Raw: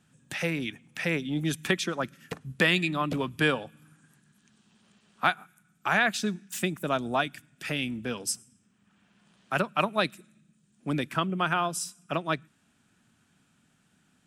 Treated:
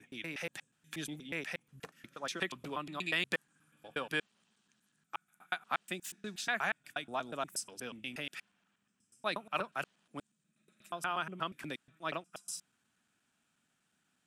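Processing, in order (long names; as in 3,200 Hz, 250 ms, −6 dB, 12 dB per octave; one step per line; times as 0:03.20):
slices reordered back to front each 120 ms, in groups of 7
low-shelf EQ 280 Hz −11.5 dB
level −8 dB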